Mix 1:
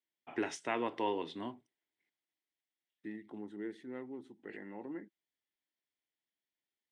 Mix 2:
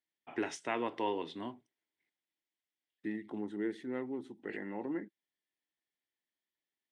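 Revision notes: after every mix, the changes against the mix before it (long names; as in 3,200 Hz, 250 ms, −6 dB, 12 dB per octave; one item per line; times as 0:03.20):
second voice +6.0 dB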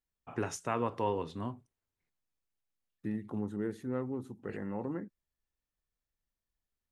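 master: remove loudspeaker in its box 290–8,400 Hz, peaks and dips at 320 Hz +6 dB, 500 Hz −5 dB, 1,200 Hz −9 dB, 2,000 Hz +9 dB, 3,300 Hz +8 dB, 6,800 Hz −8 dB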